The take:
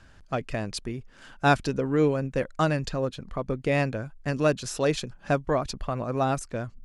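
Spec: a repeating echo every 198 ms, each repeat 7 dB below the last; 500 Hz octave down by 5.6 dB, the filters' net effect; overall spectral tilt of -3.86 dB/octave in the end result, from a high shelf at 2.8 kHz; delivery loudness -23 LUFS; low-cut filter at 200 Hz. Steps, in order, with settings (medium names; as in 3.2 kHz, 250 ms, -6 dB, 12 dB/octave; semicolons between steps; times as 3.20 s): high-pass 200 Hz; peaking EQ 500 Hz -7 dB; treble shelf 2.8 kHz +5 dB; feedback delay 198 ms, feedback 45%, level -7 dB; trim +6.5 dB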